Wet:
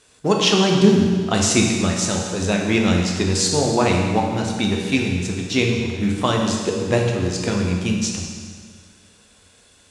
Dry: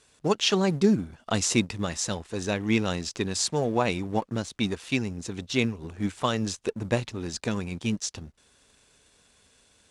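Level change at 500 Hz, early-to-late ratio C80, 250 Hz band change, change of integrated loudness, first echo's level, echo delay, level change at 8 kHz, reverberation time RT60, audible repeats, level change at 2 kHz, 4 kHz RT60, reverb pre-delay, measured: +8.0 dB, 4.0 dB, +8.5 dB, +8.5 dB, no echo, no echo, +8.0 dB, 1.8 s, no echo, +8.0 dB, 1.7 s, 10 ms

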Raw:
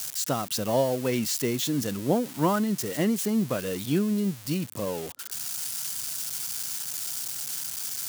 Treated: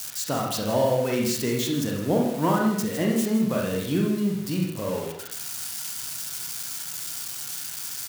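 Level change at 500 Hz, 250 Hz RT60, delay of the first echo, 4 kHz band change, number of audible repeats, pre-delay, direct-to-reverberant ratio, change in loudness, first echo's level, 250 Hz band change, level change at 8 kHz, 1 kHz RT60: +2.5 dB, 0.65 s, 160 ms, +1.0 dB, 1, 24 ms, -1.5 dB, +1.5 dB, -12.5 dB, +2.5 dB, -0.5 dB, 0.65 s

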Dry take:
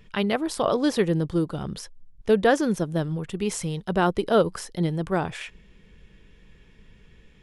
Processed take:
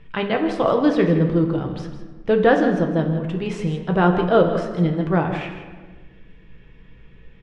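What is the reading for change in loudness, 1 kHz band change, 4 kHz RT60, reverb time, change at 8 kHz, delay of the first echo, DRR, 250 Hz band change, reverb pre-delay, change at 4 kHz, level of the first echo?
+5.0 dB, +4.5 dB, 0.85 s, 1.4 s, under -10 dB, 161 ms, 2.5 dB, +5.5 dB, 6 ms, -0.5 dB, -12.0 dB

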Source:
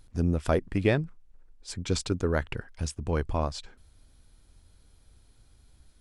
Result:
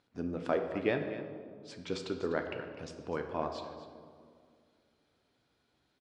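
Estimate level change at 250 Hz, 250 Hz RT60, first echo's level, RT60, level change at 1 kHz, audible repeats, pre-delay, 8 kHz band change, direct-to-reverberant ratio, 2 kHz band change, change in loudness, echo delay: -7.0 dB, 2.6 s, -13.5 dB, 2.1 s, -3.5 dB, 1, 7 ms, -16.0 dB, 4.0 dB, -4.5 dB, -7.0 dB, 250 ms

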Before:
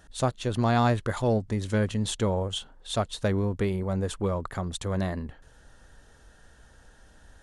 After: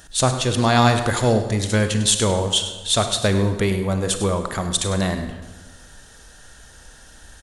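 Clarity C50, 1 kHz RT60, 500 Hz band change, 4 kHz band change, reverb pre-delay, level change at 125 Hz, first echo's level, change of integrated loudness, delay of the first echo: 7.5 dB, 1.2 s, +7.0 dB, +14.5 dB, 31 ms, +6.5 dB, -13.0 dB, +8.5 dB, 101 ms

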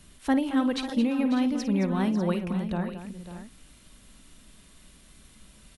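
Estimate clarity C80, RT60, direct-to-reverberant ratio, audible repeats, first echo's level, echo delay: no reverb, no reverb, no reverb, 4, -12.5 dB, 52 ms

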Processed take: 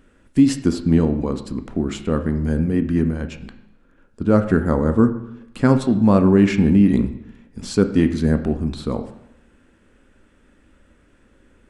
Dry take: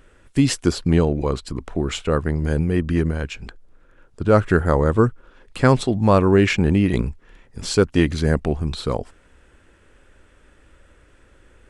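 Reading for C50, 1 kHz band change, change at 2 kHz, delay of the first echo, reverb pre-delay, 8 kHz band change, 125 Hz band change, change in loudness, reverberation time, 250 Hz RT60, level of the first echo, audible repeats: 11.0 dB, -4.0 dB, -5.0 dB, no echo, 6 ms, no reading, -0.5 dB, +1.0 dB, 0.80 s, 0.85 s, no echo, no echo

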